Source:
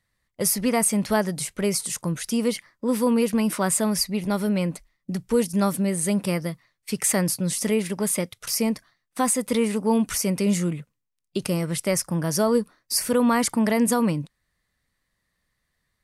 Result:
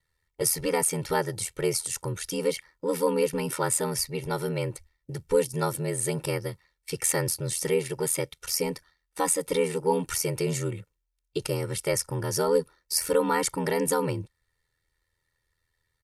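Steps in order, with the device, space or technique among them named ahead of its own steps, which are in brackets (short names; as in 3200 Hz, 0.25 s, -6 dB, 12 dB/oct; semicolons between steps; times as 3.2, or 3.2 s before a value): ring-modulated robot voice (ring modulator 41 Hz; comb 2.2 ms, depth 97%); gain -2.5 dB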